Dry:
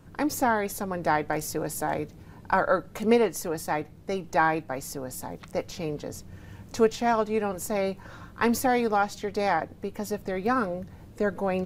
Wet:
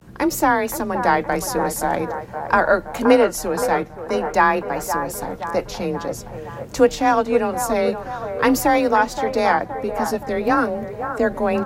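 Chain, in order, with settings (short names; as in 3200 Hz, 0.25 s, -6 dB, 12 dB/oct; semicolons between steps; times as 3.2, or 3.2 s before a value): vibrato 0.48 Hz 64 cents; frequency shift +26 Hz; band-limited delay 0.521 s, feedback 57%, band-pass 810 Hz, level -7.5 dB; gain +7 dB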